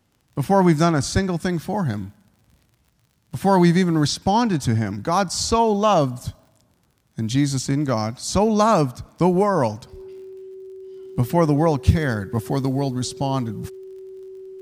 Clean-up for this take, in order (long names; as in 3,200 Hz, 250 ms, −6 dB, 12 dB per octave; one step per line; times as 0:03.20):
click removal
notch filter 380 Hz, Q 30